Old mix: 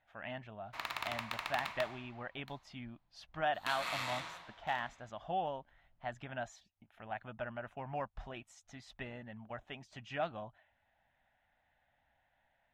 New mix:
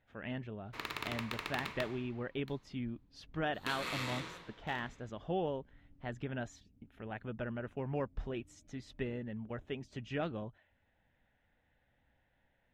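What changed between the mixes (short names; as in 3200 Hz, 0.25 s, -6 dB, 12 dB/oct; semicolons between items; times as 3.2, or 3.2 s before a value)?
first sound: unmuted; master: add resonant low shelf 550 Hz +7 dB, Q 3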